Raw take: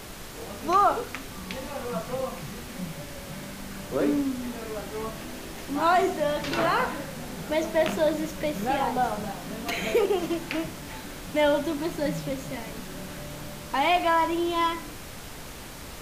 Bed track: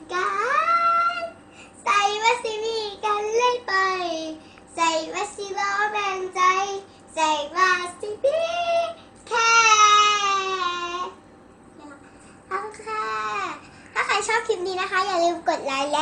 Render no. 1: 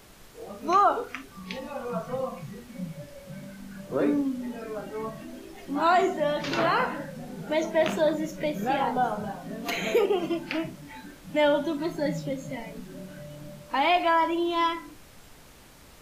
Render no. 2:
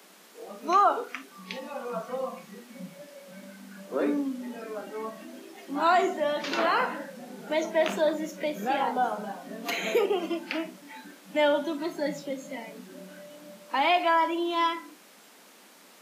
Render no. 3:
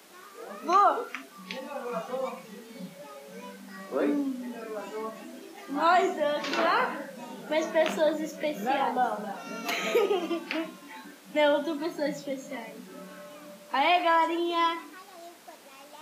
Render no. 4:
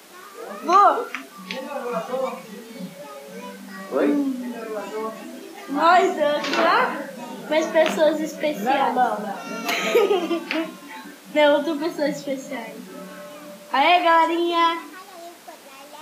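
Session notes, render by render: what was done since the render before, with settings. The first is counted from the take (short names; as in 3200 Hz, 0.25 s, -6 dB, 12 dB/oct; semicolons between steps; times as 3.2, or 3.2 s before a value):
noise print and reduce 11 dB
steep high-pass 180 Hz 72 dB/oct; low shelf 330 Hz -5 dB
add bed track -26.5 dB
gain +7 dB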